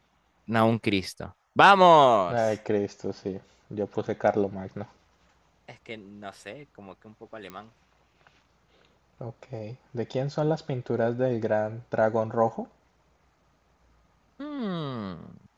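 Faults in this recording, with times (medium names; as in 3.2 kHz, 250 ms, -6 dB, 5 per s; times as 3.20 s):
7.50 s: pop -24 dBFS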